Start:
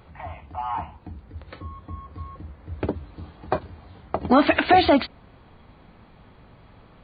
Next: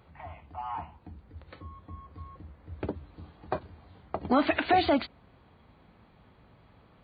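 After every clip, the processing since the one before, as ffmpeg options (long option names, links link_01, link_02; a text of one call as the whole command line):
ffmpeg -i in.wav -af "highpass=44,volume=-7.5dB" out.wav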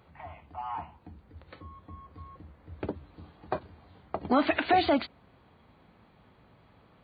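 ffmpeg -i in.wav -af "lowshelf=frequency=72:gain=-7" out.wav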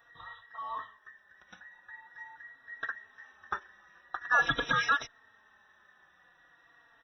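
ffmpeg -i in.wav -filter_complex "[0:a]afftfilt=real='real(if(between(b,1,1012),(2*floor((b-1)/92)+1)*92-b,b),0)':imag='imag(if(between(b,1,1012),(2*floor((b-1)/92)+1)*92-b,b),0)*if(between(b,1,1012),-1,1)':win_size=2048:overlap=0.75,asplit=2[link_01][link_02];[link_02]adelay=3.7,afreqshift=-0.45[link_03];[link_01][link_03]amix=inputs=2:normalize=1" out.wav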